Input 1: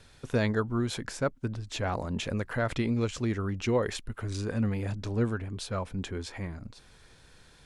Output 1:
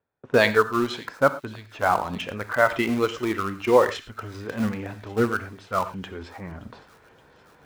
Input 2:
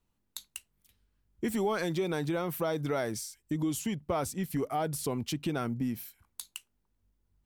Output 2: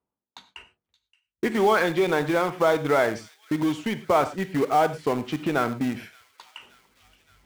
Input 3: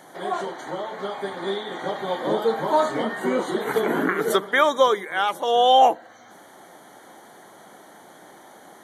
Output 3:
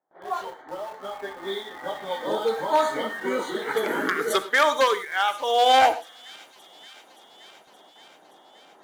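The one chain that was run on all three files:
wavefolder on the positive side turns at −12.5 dBFS
low-pass that shuts in the quiet parts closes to 920 Hz, open at −18 dBFS
high-pass filter 570 Hz 6 dB per octave
noise reduction from a noise print of the clip's start 8 dB
noise gate with hold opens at −51 dBFS
reversed playback
upward compression, threshold −45 dBFS
reversed playback
in parallel at −12 dB: bit-depth reduction 6 bits, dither none
on the sum: delay with a high-pass on its return 573 ms, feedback 72%, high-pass 2,800 Hz, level −18 dB
reverb whose tail is shaped and stops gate 130 ms flat, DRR 11 dB
loudness normalisation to −24 LKFS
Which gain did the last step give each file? +13.0, +11.5, −1.0 decibels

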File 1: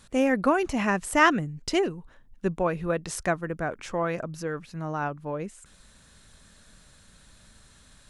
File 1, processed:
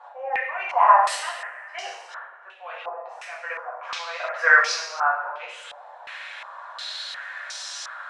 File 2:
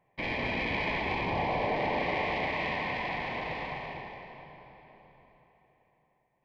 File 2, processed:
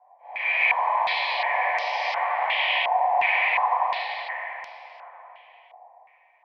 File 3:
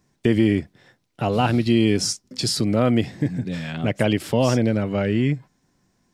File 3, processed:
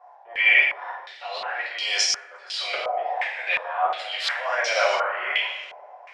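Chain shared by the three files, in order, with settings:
Butterworth high-pass 600 Hz 48 dB per octave
downward compressor 4 to 1, threshold −37 dBFS
volume swells 539 ms
coupled-rooms reverb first 0.73 s, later 2.6 s, from −18 dB, DRR −7.5 dB
low-pass on a step sequencer 2.8 Hz 790–5,500 Hz
loudness normalisation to −23 LKFS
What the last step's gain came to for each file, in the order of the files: +11.5, +3.5, +13.5 decibels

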